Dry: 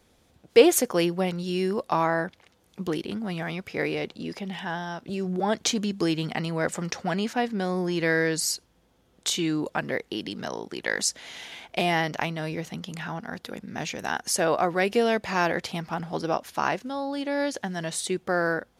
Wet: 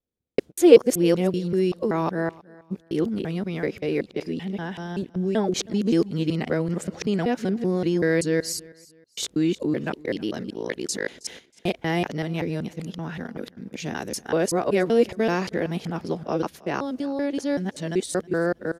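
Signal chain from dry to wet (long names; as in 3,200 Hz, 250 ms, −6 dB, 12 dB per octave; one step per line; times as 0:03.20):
reversed piece by piece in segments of 191 ms
noise gate −38 dBFS, range −30 dB
low shelf with overshoot 590 Hz +6.5 dB, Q 1.5
on a send: repeating echo 319 ms, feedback 30%, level −22.5 dB
on the sum: level −3 dB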